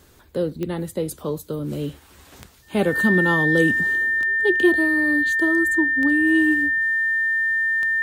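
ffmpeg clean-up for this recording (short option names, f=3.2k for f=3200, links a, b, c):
-af "adeclick=t=4,bandreject=f=1.8k:w=30"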